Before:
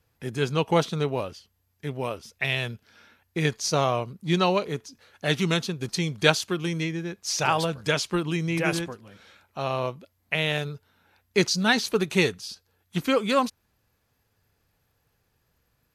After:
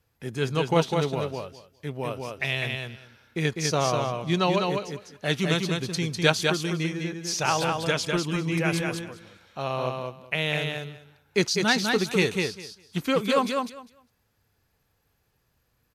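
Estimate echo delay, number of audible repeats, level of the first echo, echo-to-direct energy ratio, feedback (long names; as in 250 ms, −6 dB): 201 ms, 2, −4.0 dB, −4.0 dB, 16%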